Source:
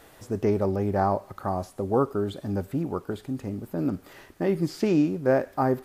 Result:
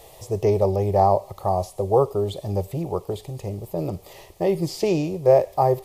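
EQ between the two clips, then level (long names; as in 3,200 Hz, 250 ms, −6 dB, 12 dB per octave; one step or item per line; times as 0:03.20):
phaser with its sweep stopped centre 620 Hz, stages 4
+8.0 dB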